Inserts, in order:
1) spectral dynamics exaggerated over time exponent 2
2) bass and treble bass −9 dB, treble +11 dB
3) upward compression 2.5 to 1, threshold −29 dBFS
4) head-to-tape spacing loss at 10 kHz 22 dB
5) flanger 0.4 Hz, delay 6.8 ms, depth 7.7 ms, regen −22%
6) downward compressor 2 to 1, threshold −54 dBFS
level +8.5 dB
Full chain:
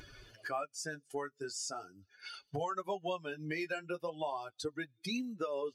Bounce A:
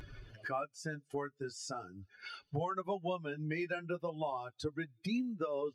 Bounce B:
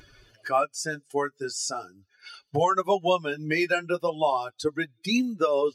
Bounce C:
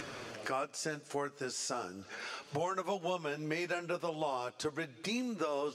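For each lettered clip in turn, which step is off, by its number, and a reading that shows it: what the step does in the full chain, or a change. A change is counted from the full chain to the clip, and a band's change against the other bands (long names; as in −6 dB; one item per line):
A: 2, 8 kHz band −7.0 dB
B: 6, average gain reduction 10.0 dB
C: 1, change in momentary loudness spread −3 LU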